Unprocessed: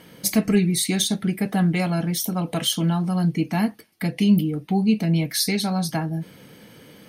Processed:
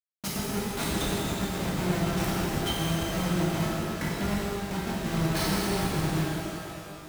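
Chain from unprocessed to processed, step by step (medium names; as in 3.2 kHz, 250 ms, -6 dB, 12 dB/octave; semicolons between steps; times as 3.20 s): transient shaper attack +11 dB, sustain -6 dB; feedback comb 160 Hz, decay 0.87 s, harmonics all, mix 60%; compression 5:1, threshold -28 dBFS, peak gain reduction 14 dB; Schmitt trigger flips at -28.5 dBFS; high-pass 42 Hz; band-stop 760 Hz, Q 21; pitch-shifted reverb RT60 2.7 s, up +12 st, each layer -8 dB, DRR -7.5 dB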